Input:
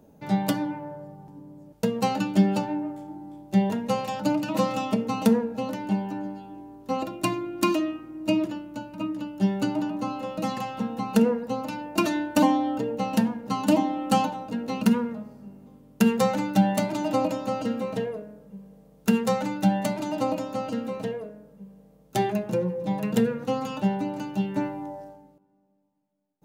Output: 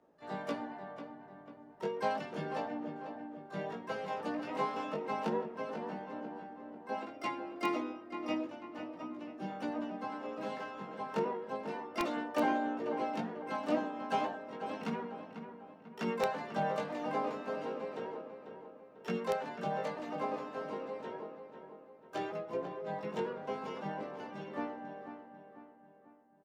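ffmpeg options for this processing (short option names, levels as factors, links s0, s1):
-filter_complex "[0:a]acrossover=split=330 7000:gain=0.141 1 0.1[s0][s1][s2];[s0][s1][s2]amix=inputs=3:normalize=0,asplit=4[s3][s4][s5][s6];[s4]asetrate=35002,aresample=44100,atempo=1.25992,volume=0.562[s7];[s5]asetrate=55563,aresample=44100,atempo=0.793701,volume=0.178[s8];[s6]asetrate=88200,aresample=44100,atempo=0.5,volume=0.355[s9];[s3][s7][s8][s9]amix=inputs=4:normalize=0,flanger=delay=16.5:depth=3.5:speed=0.32,asplit=2[s10][s11];[s11]adelay=494,lowpass=f=2800:p=1,volume=0.355,asplit=2[s12][s13];[s13]adelay=494,lowpass=f=2800:p=1,volume=0.47,asplit=2[s14][s15];[s15]adelay=494,lowpass=f=2800:p=1,volume=0.47,asplit=2[s16][s17];[s17]adelay=494,lowpass=f=2800:p=1,volume=0.47,asplit=2[s18][s19];[s19]adelay=494,lowpass=f=2800:p=1,volume=0.47[s20];[s10][s12][s14][s16][s18][s20]amix=inputs=6:normalize=0,aeval=exprs='(mod(4.22*val(0)+1,2)-1)/4.22':c=same,highshelf=f=4200:g=-11.5,volume=0.473"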